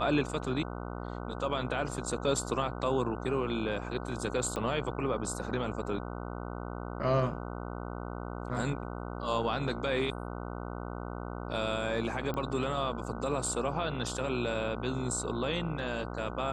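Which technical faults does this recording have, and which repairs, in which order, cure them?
buzz 60 Hz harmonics 25 -39 dBFS
4.56 s: pop -21 dBFS
12.34 s: pop -23 dBFS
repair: de-click; de-hum 60 Hz, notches 25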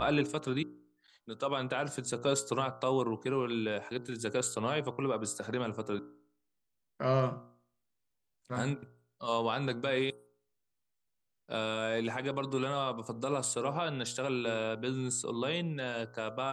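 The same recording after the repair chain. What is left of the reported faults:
4.56 s: pop

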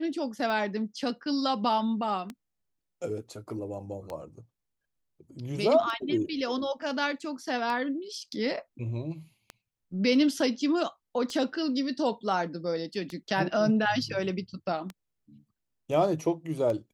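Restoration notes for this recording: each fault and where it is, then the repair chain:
tick 33 1/3 rpm -22 dBFS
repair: de-click

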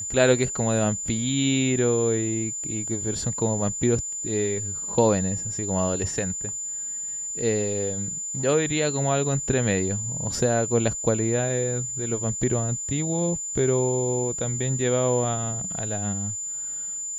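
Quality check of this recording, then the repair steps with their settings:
whine 7.1 kHz -29 dBFS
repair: band-stop 7.1 kHz, Q 30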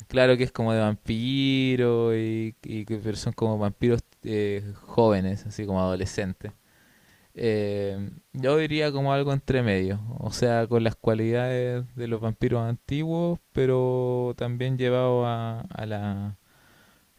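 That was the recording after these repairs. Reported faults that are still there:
nothing left

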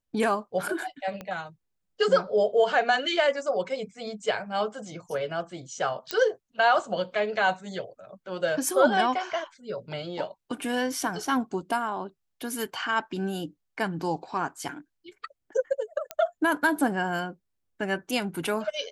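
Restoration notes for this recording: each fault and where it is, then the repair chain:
1.21 s: pop -22 dBFS
6.11 s: pop -11 dBFS
16.11 s: pop -15 dBFS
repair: de-click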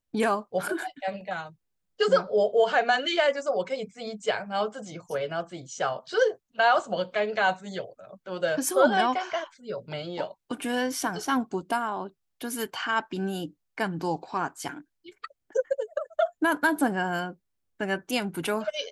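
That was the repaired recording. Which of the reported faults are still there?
1.21 s: pop

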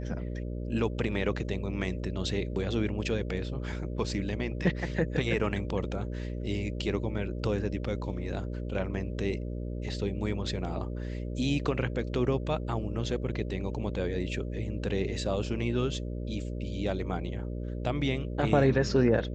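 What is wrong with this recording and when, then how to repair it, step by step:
buzz 60 Hz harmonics 10 -35 dBFS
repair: de-hum 60 Hz, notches 10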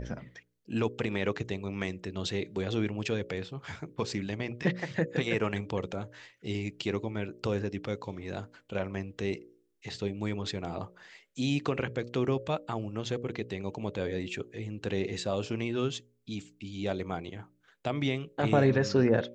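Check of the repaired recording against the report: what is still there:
nothing left

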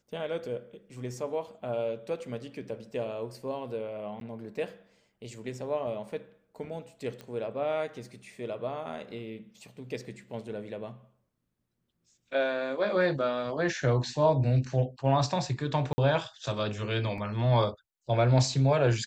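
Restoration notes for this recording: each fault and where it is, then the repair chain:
4.20–4.21 s: dropout 12 ms
7.21 s: pop -28 dBFS
15.93–15.98 s: dropout 50 ms
17.18 s: dropout 2.1 ms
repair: de-click; interpolate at 4.20 s, 12 ms; interpolate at 15.93 s, 50 ms; interpolate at 17.18 s, 2.1 ms

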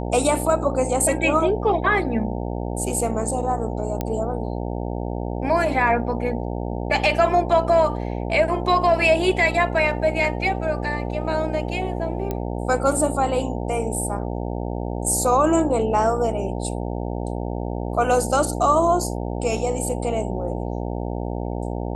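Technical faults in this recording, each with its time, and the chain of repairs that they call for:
buzz 60 Hz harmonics 15 -27 dBFS
4.01 s: pop -11 dBFS
12.31 s: pop -13 dBFS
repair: de-click; de-hum 60 Hz, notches 15

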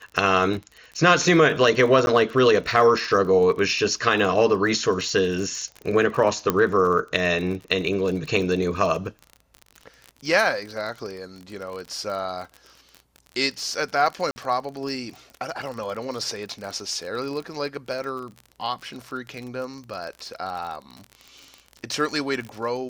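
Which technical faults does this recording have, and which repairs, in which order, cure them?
crackle 37 per s -30 dBFS
2.06–2.07 s: dropout 11 ms
6.50 s: pop -7 dBFS
14.31–14.36 s: dropout 50 ms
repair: de-click; interpolate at 2.06 s, 11 ms; interpolate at 14.31 s, 50 ms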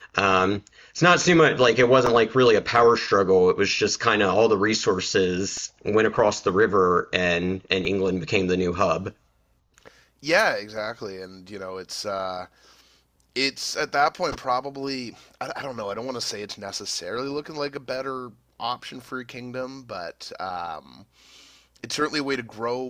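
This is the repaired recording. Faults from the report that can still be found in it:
6.50 s: pop

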